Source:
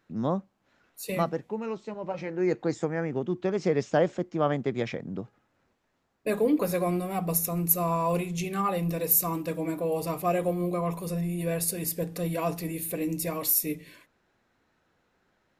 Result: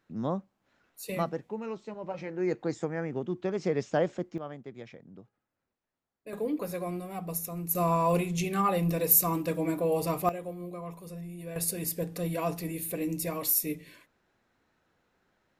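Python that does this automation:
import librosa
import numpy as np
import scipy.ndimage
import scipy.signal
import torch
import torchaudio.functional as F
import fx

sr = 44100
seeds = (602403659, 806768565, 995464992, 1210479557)

y = fx.gain(x, sr, db=fx.steps((0.0, -3.5), (4.38, -15.0), (6.33, -7.5), (7.75, 1.0), (10.29, -11.0), (11.56, -2.0)))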